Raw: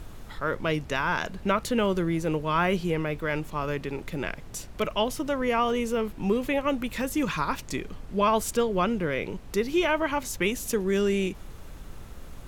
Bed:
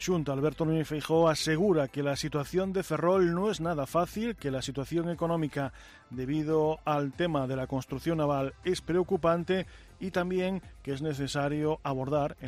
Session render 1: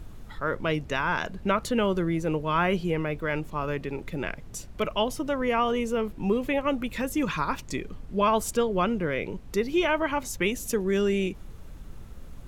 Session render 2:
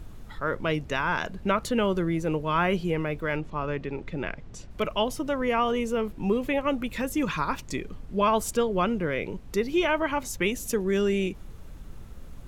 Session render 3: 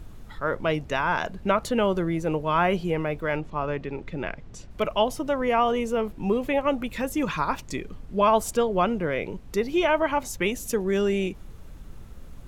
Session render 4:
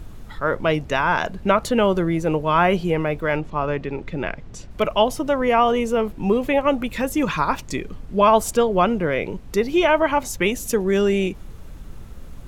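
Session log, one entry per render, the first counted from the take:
noise reduction 6 dB, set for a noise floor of -43 dBFS
3.36–4.71 s: distance through air 95 m
dynamic bell 730 Hz, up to +6 dB, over -39 dBFS, Q 1.7
trim +5 dB

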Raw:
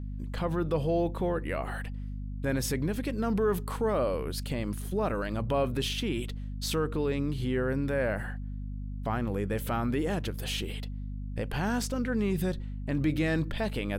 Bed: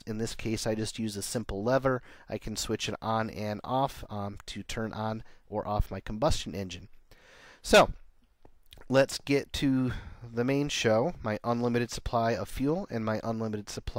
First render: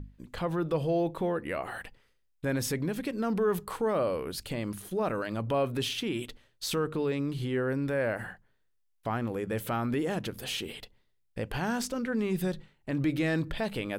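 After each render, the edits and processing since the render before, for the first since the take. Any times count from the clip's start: hum notches 50/100/150/200/250 Hz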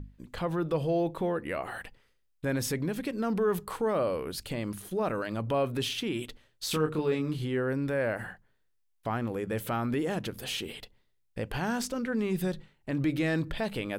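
6.68–7.37 s: doubling 26 ms -4 dB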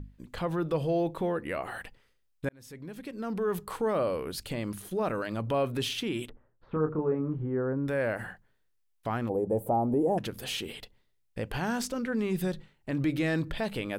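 2.49–3.81 s: fade in; 6.29–7.88 s: low-pass 1.3 kHz 24 dB/octave; 9.29–10.18 s: FFT filter 170 Hz 0 dB, 830 Hz +9 dB, 1.4 kHz -23 dB, 4.3 kHz -30 dB, 8.9 kHz -6 dB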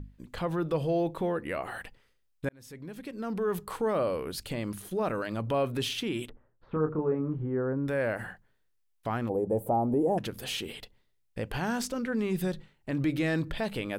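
no audible change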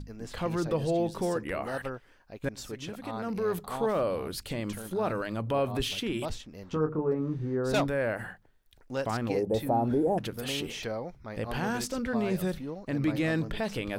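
add bed -9.5 dB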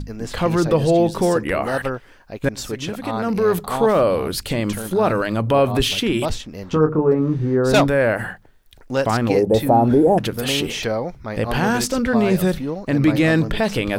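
trim +12 dB

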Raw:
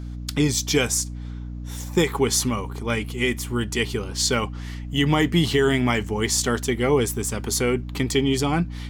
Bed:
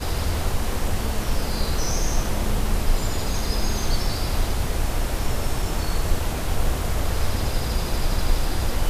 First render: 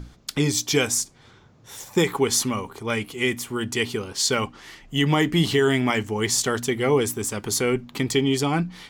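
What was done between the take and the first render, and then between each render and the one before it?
hum notches 60/120/180/240/300 Hz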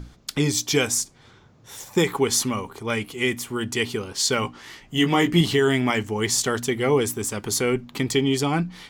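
4.43–5.41 s: doubling 17 ms -4 dB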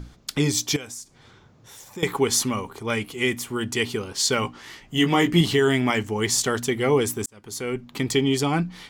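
0.76–2.03 s: compression 2:1, threshold -45 dBFS; 7.26–8.11 s: fade in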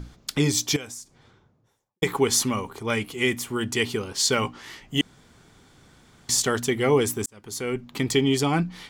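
0.79–2.02 s: studio fade out; 5.01–6.29 s: room tone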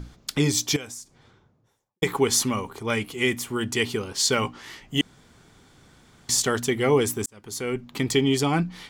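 no audible change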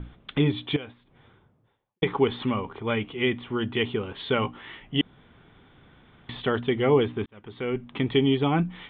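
steep low-pass 3.6 kHz 96 dB/octave; dynamic bell 2 kHz, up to -4 dB, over -37 dBFS, Q 1.1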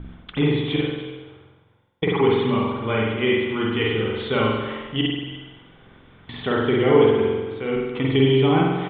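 delay 293 ms -15 dB; spring tank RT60 1.1 s, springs 45 ms, chirp 50 ms, DRR -3.5 dB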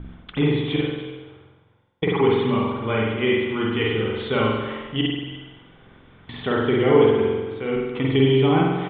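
distance through air 60 m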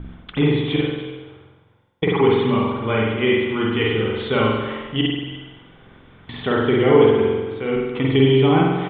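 trim +2.5 dB; peak limiter -2 dBFS, peak gain reduction 1 dB

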